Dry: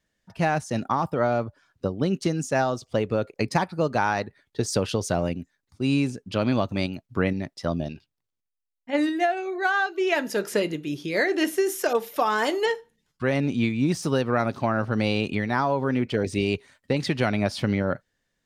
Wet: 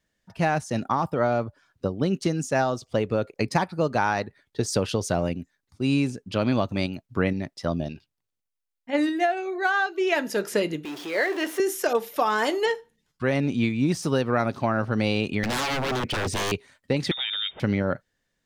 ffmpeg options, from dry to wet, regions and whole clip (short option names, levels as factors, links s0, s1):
-filter_complex "[0:a]asettb=1/sr,asplit=3[s0][s1][s2];[s0]atrim=end=10.854[s3];[s1]atrim=start=10.85:end=11.6,asetpts=PTS-STARTPTS,afade=t=in:d=0.004:c=qsin,afade=t=out:st=0.746:d=0.004:c=qsin,aeval=exprs='val(0)+0.5*0.0335*sgn(val(0))':c=same,highpass=450,highshelf=f=3700:g=-9.5[s4];[s2]atrim=start=11.596[s5];[s3][s4]acrossfade=d=0.004:c1=hsin:c2=qsin[s6];[s6][s5]acrossfade=d=0.004:c1=qsin:c2=hsin,asettb=1/sr,asplit=3[s7][s8][s9];[s7]atrim=end=15.434[s10];[s8]atrim=start=15.43:end=16.52,asetpts=PTS-STARTPTS,afade=t=in:d=0.004:c=qsin,afade=t=out:st=1.086:d=0.004:c=qsin,bandreject=f=190:w=5.3,acontrast=69,aeval=exprs='0.0841*(abs(mod(val(0)/0.0841+3,4)-2)-1)':c=same[s11];[s9]atrim=start=16.516[s12];[s10][s11]acrossfade=d=0.004:c1=hsin:c2=qsin[s13];[s13][s12]acrossfade=d=0.004:c1=qsin:c2=hsin,asettb=1/sr,asplit=3[s14][s15][s16];[s14]atrim=end=17.114[s17];[s15]atrim=start=17.11:end=17.6,asetpts=PTS-STARTPTS,afade=t=in:d=0.004:c=qsin,afade=t=out:st=0.486:d=0.004:c=qsin,equalizer=f=2700:w=6.2:g=-5.5,lowpass=f=3200:t=q:w=0.5098,lowpass=f=3200:t=q:w=0.6013,lowpass=f=3200:t=q:w=0.9,lowpass=f=3200:t=q:w=2.563,afreqshift=-3800,acompressor=threshold=0.0447:ratio=2.5:attack=3.2:release=140:knee=1:detection=peak[s18];[s16]atrim=start=17.596[s19];[s17][s18]acrossfade=d=0.004:c1=hsin:c2=qsin[s20];[s20][s19]acrossfade=d=0.004:c1=qsin:c2=hsin"